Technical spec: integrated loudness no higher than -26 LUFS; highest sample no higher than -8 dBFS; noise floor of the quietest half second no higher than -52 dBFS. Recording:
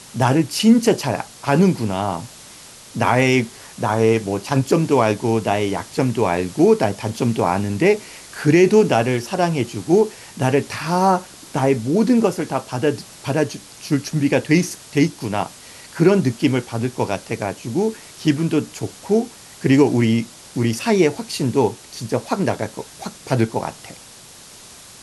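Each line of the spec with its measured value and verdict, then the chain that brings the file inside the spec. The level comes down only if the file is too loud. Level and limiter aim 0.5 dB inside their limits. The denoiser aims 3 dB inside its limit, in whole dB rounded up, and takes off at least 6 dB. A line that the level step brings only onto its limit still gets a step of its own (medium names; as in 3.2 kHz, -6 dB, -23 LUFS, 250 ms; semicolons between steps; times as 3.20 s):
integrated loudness -19.5 LUFS: fail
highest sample -2.5 dBFS: fail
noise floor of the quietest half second -42 dBFS: fail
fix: noise reduction 6 dB, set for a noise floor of -42 dBFS; trim -7 dB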